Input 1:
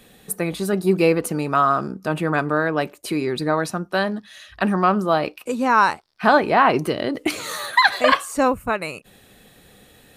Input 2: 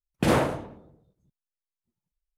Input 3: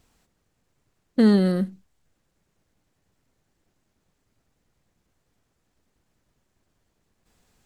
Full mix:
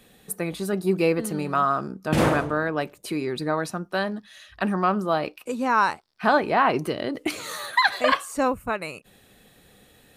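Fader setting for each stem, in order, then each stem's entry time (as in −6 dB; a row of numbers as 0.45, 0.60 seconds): −4.5, +0.5, −17.5 decibels; 0.00, 1.90, 0.00 seconds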